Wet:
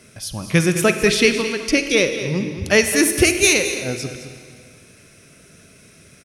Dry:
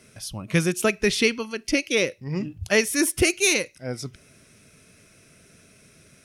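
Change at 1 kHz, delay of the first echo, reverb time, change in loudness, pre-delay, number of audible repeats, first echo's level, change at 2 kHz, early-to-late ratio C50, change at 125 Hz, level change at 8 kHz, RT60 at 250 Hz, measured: +6.0 dB, 214 ms, 2.1 s, +6.0 dB, 37 ms, 1, −11.5 dB, +6.0 dB, 7.0 dB, +6.0 dB, +6.0 dB, 2.1 s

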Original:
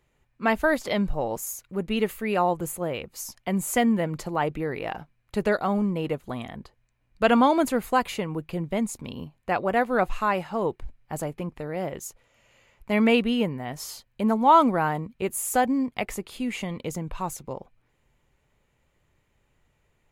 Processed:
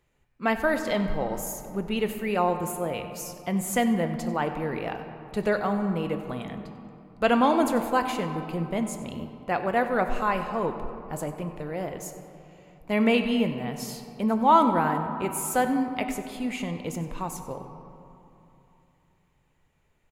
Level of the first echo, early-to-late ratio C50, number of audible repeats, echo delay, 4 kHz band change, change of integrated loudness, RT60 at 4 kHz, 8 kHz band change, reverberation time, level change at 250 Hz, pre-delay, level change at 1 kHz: −17.0 dB, 8.0 dB, 1, 95 ms, −1.5 dB, −1.0 dB, 1.4 s, −1.5 dB, 3.0 s, −1.0 dB, 4 ms, −1.0 dB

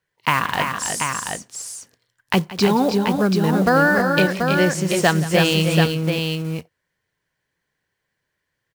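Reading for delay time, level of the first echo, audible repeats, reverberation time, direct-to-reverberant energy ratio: 174 ms, −16.5 dB, 3, no reverb audible, no reverb audible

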